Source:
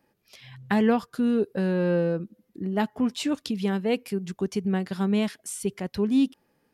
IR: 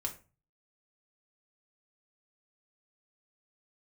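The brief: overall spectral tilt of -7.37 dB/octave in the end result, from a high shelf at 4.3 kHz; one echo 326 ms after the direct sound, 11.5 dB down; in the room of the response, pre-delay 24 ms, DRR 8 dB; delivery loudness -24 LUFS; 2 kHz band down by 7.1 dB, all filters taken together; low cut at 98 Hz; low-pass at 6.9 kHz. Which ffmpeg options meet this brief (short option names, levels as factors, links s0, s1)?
-filter_complex "[0:a]highpass=98,lowpass=6900,equalizer=f=2000:t=o:g=-8,highshelf=f=4300:g=-7,aecho=1:1:326:0.266,asplit=2[s0][s1];[1:a]atrim=start_sample=2205,adelay=24[s2];[s1][s2]afir=irnorm=-1:irlink=0,volume=0.355[s3];[s0][s3]amix=inputs=2:normalize=0,volume=1.26"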